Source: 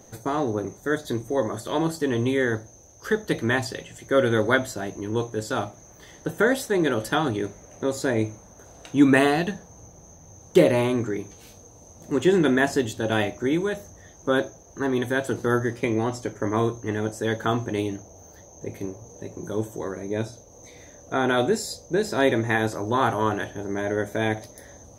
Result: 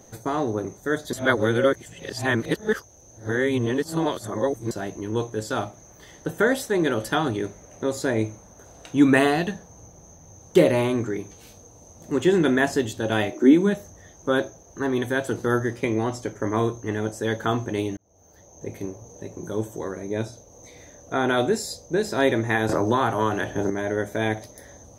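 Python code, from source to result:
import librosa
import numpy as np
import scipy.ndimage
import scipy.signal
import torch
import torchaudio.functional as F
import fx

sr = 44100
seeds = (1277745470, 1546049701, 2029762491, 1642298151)

y = fx.highpass_res(x, sr, hz=fx.line((13.31, 350.0), (13.73, 180.0)), q=5.2, at=(13.31, 13.73), fade=0.02)
y = fx.band_squash(y, sr, depth_pct=100, at=(22.69, 23.7))
y = fx.edit(y, sr, fx.reverse_span(start_s=1.13, length_s=3.58),
    fx.fade_in_span(start_s=17.97, length_s=0.69), tone=tone)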